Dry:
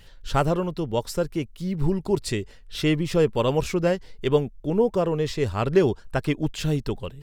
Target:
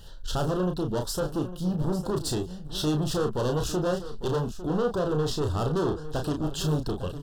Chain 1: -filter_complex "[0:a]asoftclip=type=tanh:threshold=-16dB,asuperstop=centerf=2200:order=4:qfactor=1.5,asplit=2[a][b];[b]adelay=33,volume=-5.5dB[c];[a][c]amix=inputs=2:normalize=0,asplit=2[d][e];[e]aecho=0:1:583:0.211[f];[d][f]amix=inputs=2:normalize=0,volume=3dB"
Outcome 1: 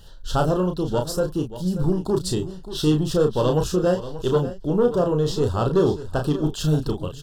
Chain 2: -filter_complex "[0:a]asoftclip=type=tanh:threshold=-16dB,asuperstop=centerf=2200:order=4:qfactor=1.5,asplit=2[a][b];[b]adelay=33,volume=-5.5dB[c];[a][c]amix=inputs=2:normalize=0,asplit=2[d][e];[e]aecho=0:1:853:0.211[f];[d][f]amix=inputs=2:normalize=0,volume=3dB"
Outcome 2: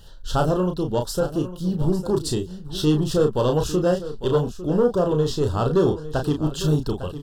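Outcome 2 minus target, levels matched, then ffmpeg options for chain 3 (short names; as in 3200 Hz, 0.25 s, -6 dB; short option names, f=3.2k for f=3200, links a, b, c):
soft clip: distortion -9 dB
-filter_complex "[0:a]asoftclip=type=tanh:threshold=-27.5dB,asuperstop=centerf=2200:order=4:qfactor=1.5,asplit=2[a][b];[b]adelay=33,volume=-5.5dB[c];[a][c]amix=inputs=2:normalize=0,asplit=2[d][e];[e]aecho=0:1:853:0.211[f];[d][f]amix=inputs=2:normalize=0,volume=3dB"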